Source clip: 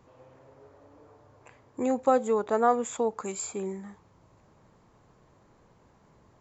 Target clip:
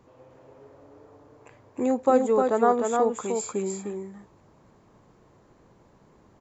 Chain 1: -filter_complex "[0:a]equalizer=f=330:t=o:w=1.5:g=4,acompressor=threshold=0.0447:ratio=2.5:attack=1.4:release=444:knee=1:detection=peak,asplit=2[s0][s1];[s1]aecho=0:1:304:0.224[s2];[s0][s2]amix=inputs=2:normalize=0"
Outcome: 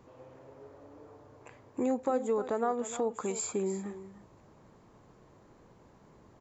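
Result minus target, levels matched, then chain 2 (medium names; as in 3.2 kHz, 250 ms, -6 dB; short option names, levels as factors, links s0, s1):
compression: peak gain reduction +10.5 dB; echo-to-direct -9 dB
-filter_complex "[0:a]equalizer=f=330:t=o:w=1.5:g=4,asplit=2[s0][s1];[s1]aecho=0:1:304:0.631[s2];[s0][s2]amix=inputs=2:normalize=0"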